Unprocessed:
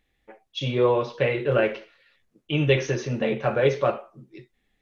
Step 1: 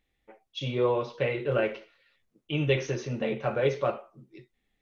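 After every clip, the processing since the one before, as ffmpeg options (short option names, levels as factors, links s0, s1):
-af "bandreject=f=1700:w=17,volume=0.562"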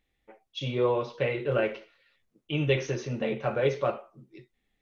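-af anull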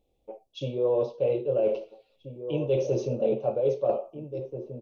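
-filter_complex "[0:a]firequalizer=gain_entry='entry(230,0);entry(530,10);entry(1800,-29);entry(2500,-9);entry(5000,-5)':delay=0.05:min_phase=1,areverse,acompressor=threshold=0.0447:ratio=5,areverse,asplit=2[s0][s1];[s1]adelay=1633,volume=0.355,highshelf=f=4000:g=-36.7[s2];[s0][s2]amix=inputs=2:normalize=0,volume=1.58"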